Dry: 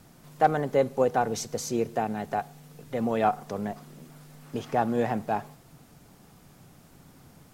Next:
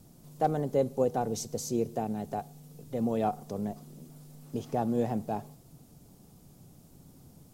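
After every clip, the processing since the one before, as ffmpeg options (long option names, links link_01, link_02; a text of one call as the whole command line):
ffmpeg -i in.wav -af "equalizer=frequency=1700:width_type=o:width=2.1:gain=-14.5" out.wav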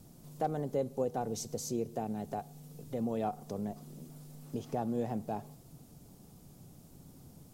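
ffmpeg -i in.wav -af "acompressor=threshold=-39dB:ratio=1.5" out.wav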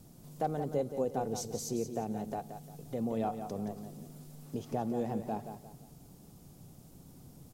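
ffmpeg -i in.wav -af "aecho=1:1:175|350|525|700:0.355|0.121|0.041|0.0139" out.wav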